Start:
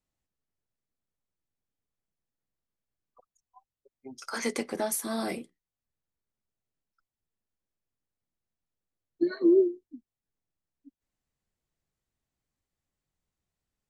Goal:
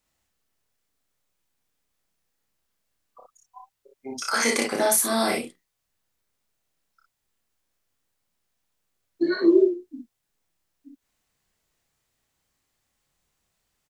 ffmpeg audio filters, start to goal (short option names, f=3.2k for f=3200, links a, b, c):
-filter_complex "[0:a]lowshelf=f=490:g=-9,asplit=2[a][b];[b]acompressor=threshold=-38dB:ratio=6,volume=0dB[c];[a][c]amix=inputs=2:normalize=0,aecho=1:1:30|58:0.631|0.668,volume=6dB"